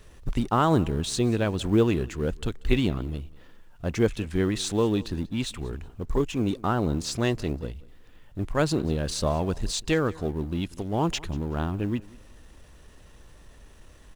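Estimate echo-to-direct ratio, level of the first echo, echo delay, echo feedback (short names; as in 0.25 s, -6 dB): -22.0 dB, -22.5 dB, 0.187 s, 26%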